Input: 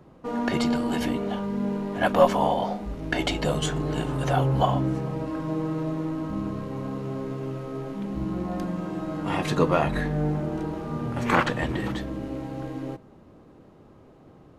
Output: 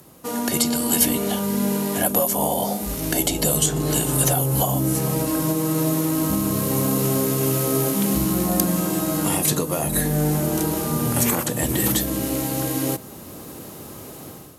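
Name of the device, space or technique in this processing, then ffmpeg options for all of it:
FM broadcast chain: -filter_complex "[0:a]highpass=58,dynaudnorm=framelen=750:gausssize=3:maxgain=11.5dB,acrossover=split=760|7100[link_01][link_02][link_03];[link_01]acompressor=threshold=-18dB:ratio=4[link_04];[link_02]acompressor=threshold=-37dB:ratio=4[link_05];[link_03]acompressor=threshold=-49dB:ratio=4[link_06];[link_04][link_05][link_06]amix=inputs=3:normalize=0,aemphasis=mode=production:type=75fm,alimiter=limit=-14.5dB:level=0:latency=1:release=447,asoftclip=type=hard:threshold=-15.5dB,lowpass=frequency=15000:width=0.5412,lowpass=frequency=15000:width=1.3066,aemphasis=mode=production:type=75fm,volume=3dB"

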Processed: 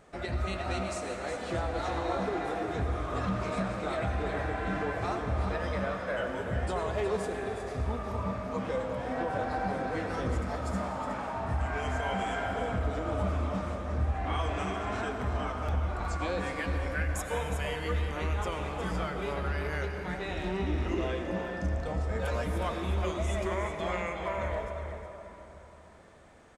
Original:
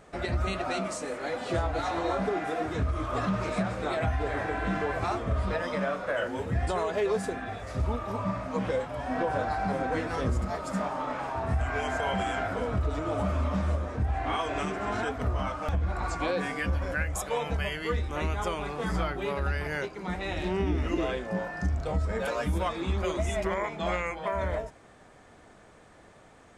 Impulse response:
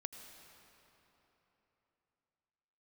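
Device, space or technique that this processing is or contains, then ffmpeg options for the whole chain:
cave: -filter_complex "[0:a]aecho=1:1:364:0.355[link_01];[1:a]atrim=start_sample=2205[link_02];[link_01][link_02]afir=irnorm=-1:irlink=0"

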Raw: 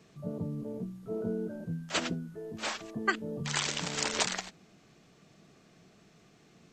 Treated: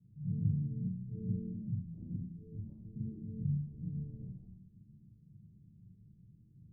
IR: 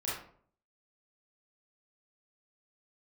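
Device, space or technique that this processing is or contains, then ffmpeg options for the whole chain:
club heard from the street: -filter_complex "[0:a]alimiter=limit=-24dB:level=0:latency=1:release=48,lowpass=frequency=170:width=0.5412,lowpass=frequency=170:width=1.3066[link_01];[1:a]atrim=start_sample=2205[link_02];[link_01][link_02]afir=irnorm=-1:irlink=0,volume=4dB"

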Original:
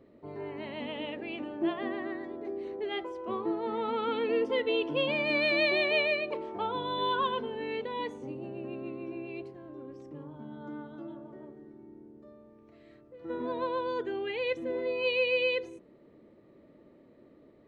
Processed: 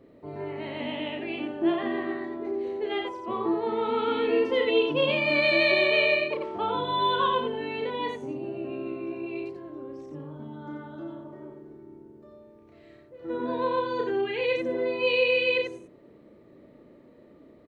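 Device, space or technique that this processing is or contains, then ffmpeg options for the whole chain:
slapback doubling: -filter_complex "[0:a]asplit=3[link_01][link_02][link_03];[link_02]adelay=33,volume=-4.5dB[link_04];[link_03]adelay=89,volume=-4.5dB[link_05];[link_01][link_04][link_05]amix=inputs=3:normalize=0,volume=2.5dB"

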